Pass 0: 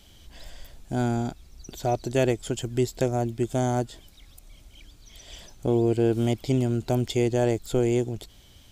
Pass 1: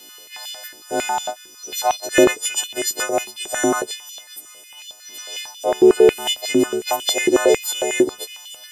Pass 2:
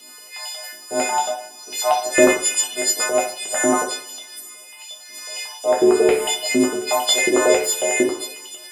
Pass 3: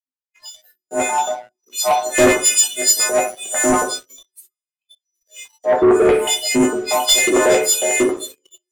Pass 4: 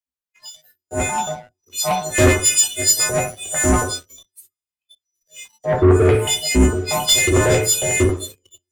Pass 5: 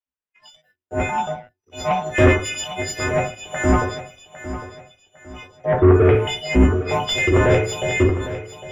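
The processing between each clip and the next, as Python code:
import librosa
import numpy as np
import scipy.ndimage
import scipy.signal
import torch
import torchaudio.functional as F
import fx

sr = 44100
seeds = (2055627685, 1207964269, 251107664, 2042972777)

y1 = fx.freq_snap(x, sr, grid_st=3)
y1 = fx.echo_stepped(y1, sr, ms=416, hz=4100.0, octaves=0.7, feedback_pct=70, wet_db=-11.5)
y1 = fx.filter_held_highpass(y1, sr, hz=11.0, low_hz=330.0, high_hz=3200.0)
y1 = F.gain(torch.from_numpy(y1), 5.0).numpy()
y2 = fx.low_shelf(y1, sr, hz=140.0, db=-7.0)
y2 = fx.rev_double_slope(y2, sr, seeds[0], early_s=0.49, late_s=2.1, knee_db=-26, drr_db=-2.0)
y2 = F.gain(torch.from_numpy(y2), -2.5).numpy()
y3 = fx.noise_reduce_blind(y2, sr, reduce_db=26)
y3 = fx.leveller(y3, sr, passes=3)
y3 = fx.band_widen(y3, sr, depth_pct=70)
y3 = F.gain(torch.from_numpy(y3), -7.0).numpy()
y4 = fx.octave_divider(y3, sr, octaves=2, level_db=3.0)
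y4 = fx.dynamic_eq(y4, sr, hz=720.0, q=1.3, threshold_db=-28.0, ratio=4.0, max_db=-4)
y4 = F.gain(torch.from_numpy(y4), -1.0).numpy()
y5 = scipy.signal.savgol_filter(y4, 25, 4, mode='constant')
y5 = fx.echo_feedback(y5, sr, ms=805, feedback_pct=35, wet_db=-13.0)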